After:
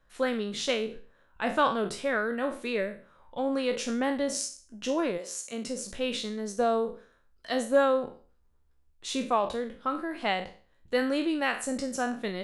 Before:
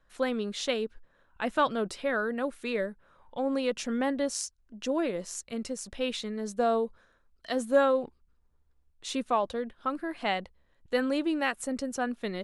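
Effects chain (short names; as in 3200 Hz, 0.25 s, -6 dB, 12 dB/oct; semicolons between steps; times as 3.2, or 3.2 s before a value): spectral trails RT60 0.40 s; 5.17–5.67 HPF 460 Hz -> 170 Hz 12 dB/oct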